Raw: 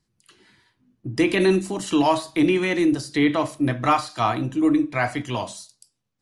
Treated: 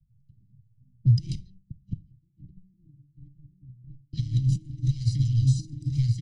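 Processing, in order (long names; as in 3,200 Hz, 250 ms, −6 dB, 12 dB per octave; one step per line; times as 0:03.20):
repeating echo 1,031 ms, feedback 23%, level −4.5 dB
0:01.35–0:04.13: gate with flip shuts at −21 dBFS, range −32 dB
leveller curve on the samples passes 3
high-frequency loss of the air 120 metres
convolution reverb RT60 0.35 s, pre-delay 7 ms, DRR 16.5 dB
low-pass that shuts in the quiet parts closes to 430 Hz, open at −15 dBFS
compressor whose output falls as the input rises −17 dBFS, ratio −0.5
Chebyshev band-stop filter 130–4,900 Hz, order 3
low shelf with overshoot 510 Hz +6.5 dB, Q 1.5
comb filter 1 ms, depth 55%
multiband upward and downward compressor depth 40%
level −6.5 dB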